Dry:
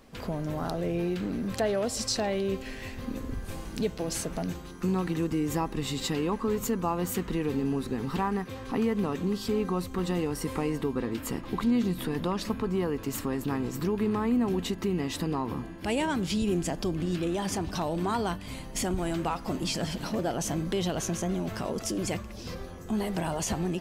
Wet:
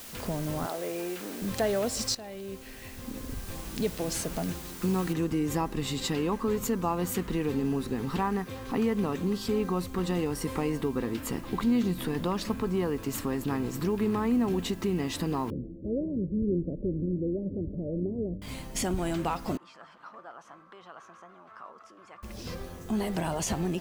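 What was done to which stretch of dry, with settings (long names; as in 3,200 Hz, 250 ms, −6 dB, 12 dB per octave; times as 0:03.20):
0:00.66–0:01.42: band-pass filter 400–3,400 Hz
0:02.15–0:03.93: fade in, from −15.5 dB
0:05.13: noise floor change −45 dB −58 dB
0:15.50–0:18.42: Chebyshev low-pass filter 570 Hz, order 6
0:19.57–0:22.23: resonant band-pass 1,200 Hz, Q 5.3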